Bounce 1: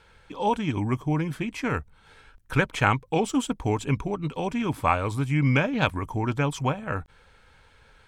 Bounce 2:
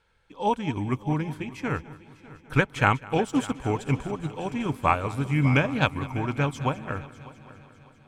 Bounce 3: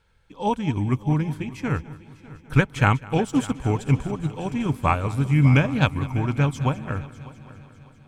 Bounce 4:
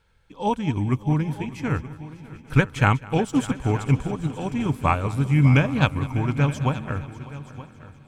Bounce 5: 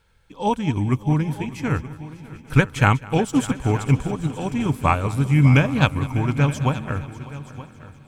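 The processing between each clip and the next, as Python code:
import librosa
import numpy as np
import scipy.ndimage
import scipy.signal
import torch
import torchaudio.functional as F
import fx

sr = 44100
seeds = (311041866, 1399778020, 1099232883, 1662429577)

y1 = fx.echo_heads(x, sr, ms=200, heads='first and third', feedback_pct=65, wet_db=-15.0)
y1 = fx.upward_expand(y1, sr, threshold_db=-44.0, expansion=1.5)
y1 = y1 * librosa.db_to_amplitude(1.5)
y2 = fx.bass_treble(y1, sr, bass_db=7, treble_db=3)
y3 = y2 + 10.0 ** (-16.5 / 20.0) * np.pad(y2, (int(924 * sr / 1000.0), 0))[:len(y2)]
y4 = fx.high_shelf(y3, sr, hz=7000.0, db=5.5)
y4 = y4 * librosa.db_to_amplitude(2.0)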